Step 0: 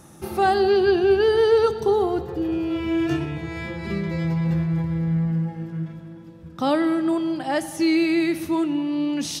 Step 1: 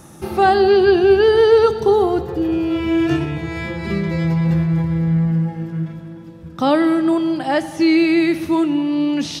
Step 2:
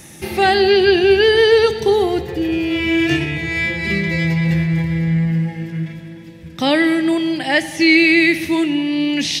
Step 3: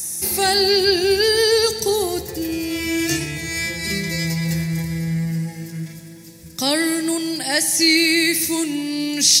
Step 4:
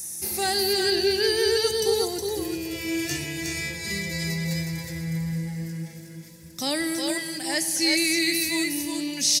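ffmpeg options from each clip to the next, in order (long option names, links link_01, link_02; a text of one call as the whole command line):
ffmpeg -i in.wav -filter_complex "[0:a]acrossover=split=5100[link_01][link_02];[link_02]acompressor=threshold=-49dB:ratio=4:attack=1:release=60[link_03];[link_01][link_03]amix=inputs=2:normalize=0,volume=5.5dB" out.wav
ffmpeg -i in.wav -af "highshelf=frequency=1600:width_type=q:width=3:gain=7" out.wav
ffmpeg -i in.wav -af "aexciter=amount=12.9:drive=2.4:freq=4600,volume=-5.5dB" out.wav
ffmpeg -i in.wav -af "aecho=1:1:364|366:0.596|0.355,volume=-7.5dB" out.wav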